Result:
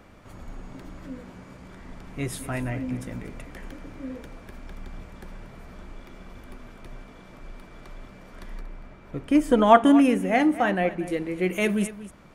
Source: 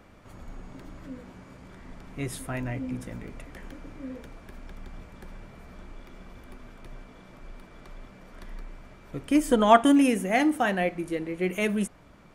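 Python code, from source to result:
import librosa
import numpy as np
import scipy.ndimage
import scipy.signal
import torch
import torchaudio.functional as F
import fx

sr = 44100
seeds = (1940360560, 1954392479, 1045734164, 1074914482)

y = fx.high_shelf(x, sr, hz=3800.0, db=-10.0, at=(8.61, 11.07))
y = y + 10.0 ** (-15.5 / 20.0) * np.pad(y, (int(235 * sr / 1000.0), 0))[:len(y)]
y = F.gain(torch.from_numpy(y), 2.5).numpy()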